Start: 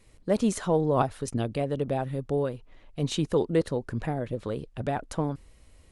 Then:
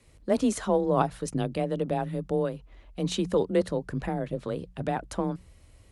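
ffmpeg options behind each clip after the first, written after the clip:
-af "afreqshift=25,bandreject=f=60:t=h:w=6,bandreject=f=120:t=h:w=6,bandreject=f=180:t=h:w=6"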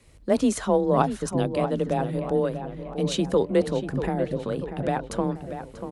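-filter_complex "[0:a]asplit=2[a][b];[b]adelay=639,lowpass=f=2.8k:p=1,volume=-9.5dB,asplit=2[c][d];[d]adelay=639,lowpass=f=2.8k:p=1,volume=0.52,asplit=2[e][f];[f]adelay=639,lowpass=f=2.8k:p=1,volume=0.52,asplit=2[g][h];[h]adelay=639,lowpass=f=2.8k:p=1,volume=0.52,asplit=2[i][j];[j]adelay=639,lowpass=f=2.8k:p=1,volume=0.52,asplit=2[k][l];[l]adelay=639,lowpass=f=2.8k:p=1,volume=0.52[m];[a][c][e][g][i][k][m]amix=inputs=7:normalize=0,volume=3dB"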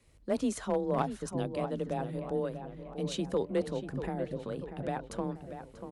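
-af "aeval=exprs='clip(val(0),-1,0.237)':c=same,volume=-9dB"

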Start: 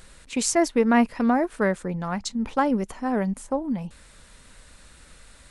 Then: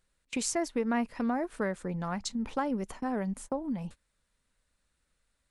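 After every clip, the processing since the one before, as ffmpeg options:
-af "agate=range=-27dB:threshold=-38dB:ratio=16:detection=peak,acompressor=threshold=-35dB:ratio=2"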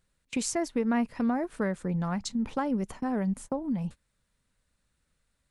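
-af "equalizer=f=130:w=0.78:g=7"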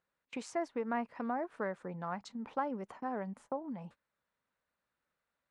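-af "bandpass=f=940:t=q:w=0.83:csg=0,volume=-2dB"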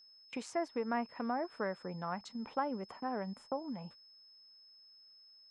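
-af "aeval=exprs='val(0)+0.00126*sin(2*PI*5200*n/s)':c=same"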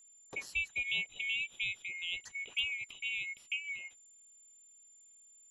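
-af "afftfilt=real='real(if(lt(b,920),b+92*(1-2*mod(floor(b/92),2)),b),0)':imag='imag(if(lt(b,920),b+92*(1-2*mod(floor(b/92),2)),b),0)':win_size=2048:overlap=0.75,asoftclip=type=hard:threshold=-23dB"

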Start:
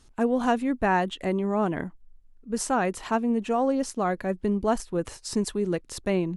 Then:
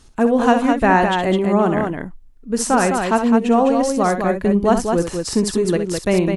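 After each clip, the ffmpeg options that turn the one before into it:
-af "aecho=1:1:64.14|207:0.355|0.562,volume=8dB"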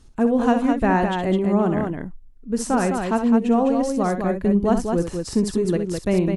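-af "lowshelf=f=430:g=8,volume=-8dB"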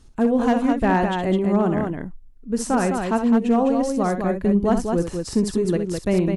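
-af "asoftclip=type=hard:threshold=-10dB"

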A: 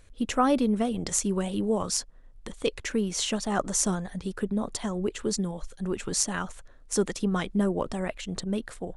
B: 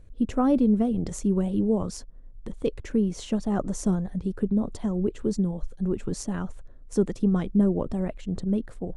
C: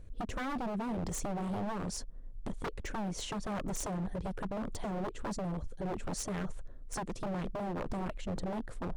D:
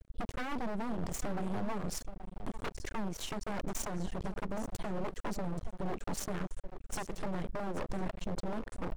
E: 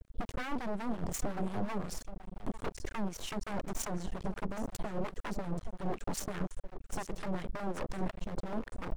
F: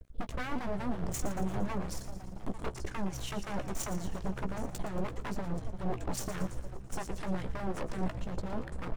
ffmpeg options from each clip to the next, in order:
-af "tiltshelf=f=710:g=9.5,volume=-3dB"
-af "acompressor=threshold=-27dB:ratio=5,aeval=exprs='0.0299*(abs(mod(val(0)/0.0299+3,4)-2)-1)':c=same"
-af "aecho=1:1:826:0.188,aeval=exprs='max(val(0),0)':c=same,volume=3dB"
-filter_complex "[0:a]acrossover=split=1100[a][b];[a]aeval=exprs='val(0)*(1-0.7/2+0.7/2*cos(2*PI*5.6*n/s))':c=same[c];[b]aeval=exprs='val(0)*(1-0.7/2-0.7/2*cos(2*PI*5.6*n/s))':c=same[d];[c][d]amix=inputs=2:normalize=0,volume=3.5dB"
-filter_complex "[0:a]asplit=2[a][b];[b]adelay=16,volume=-10dB[c];[a][c]amix=inputs=2:normalize=0,asplit=2[d][e];[e]asplit=6[f][g][h][i][j][k];[f]adelay=115,afreqshift=-66,volume=-12dB[l];[g]adelay=230,afreqshift=-132,volume=-16.9dB[m];[h]adelay=345,afreqshift=-198,volume=-21.8dB[n];[i]adelay=460,afreqshift=-264,volume=-26.6dB[o];[j]adelay=575,afreqshift=-330,volume=-31.5dB[p];[k]adelay=690,afreqshift=-396,volume=-36.4dB[q];[l][m][n][o][p][q]amix=inputs=6:normalize=0[r];[d][r]amix=inputs=2:normalize=0"

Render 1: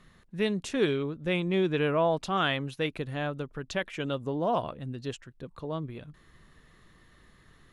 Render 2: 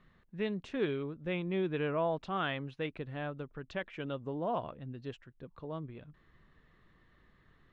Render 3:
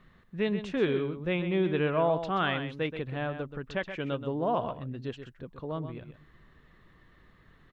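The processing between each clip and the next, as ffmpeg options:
-af "lowpass=3k,volume=-6.5dB"
-af "aecho=1:1:128:0.335,volume=5.5dB"

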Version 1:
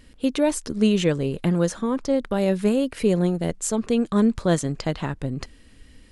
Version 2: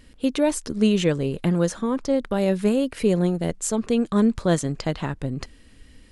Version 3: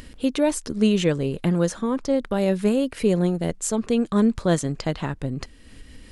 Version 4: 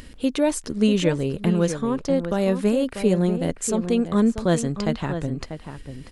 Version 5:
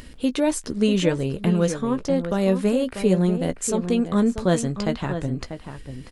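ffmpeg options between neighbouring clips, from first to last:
-af anull
-af "acompressor=mode=upward:threshold=-34dB:ratio=2.5"
-filter_complex "[0:a]asplit=2[a][b];[b]adelay=641.4,volume=-9dB,highshelf=f=4k:g=-14.4[c];[a][c]amix=inputs=2:normalize=0"
-filter_complex "[0:a]asplit=2[a][b];[b]adelay=16,volume=-11dB[c];[a][c]amix=inputs=2:normalize=0"

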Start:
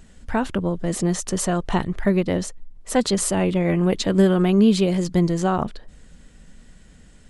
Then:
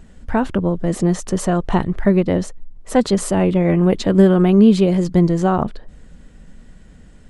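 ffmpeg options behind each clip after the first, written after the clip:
-af "highshelf=f=2.1k:g=-9,volume=5dB"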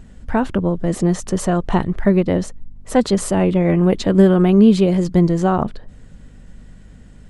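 -af "aeval=exprs='val(0)+0.00631*(sin(2*PI*50*n/s)+sin(2*PI*2*50*n/s)/2+sin(2*PI*3*50*n/s)/3+sin(2*PI*4*50*n/s)/4+sin(2*PI*5*50*n/s)/5)':c=same"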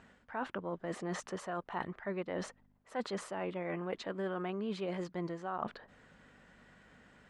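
-af "bandpass=f=1.4k:t=q:w=0.85:csg=0,areverse,acompressor=threshold=-34dB:ratio=6,areverse,volume=-1.5dB"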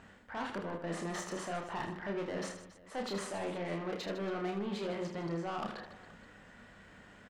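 -filter_complex "[0:a]asoftclip=type=tanh:threshold=-37.5dB,asplit=2[a][b];[b]aecho=0:1:30|78|154.8|277.7|474.3:0.631|0.398|0.251|0.158|0.1[c];[a][c]amix=inputs=2:normalize=0,volume=3dB"

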